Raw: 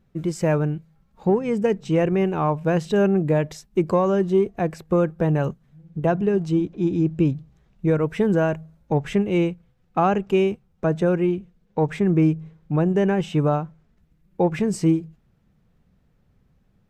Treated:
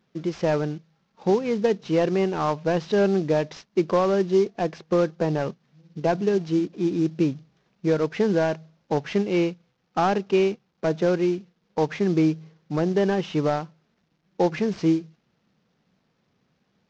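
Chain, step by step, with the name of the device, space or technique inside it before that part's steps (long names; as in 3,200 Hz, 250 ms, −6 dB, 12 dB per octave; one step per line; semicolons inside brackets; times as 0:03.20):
early wireless headset (high-pass filter 210 Hz 12 dB per octave; variable-slope delta modulation 32 kbit/s)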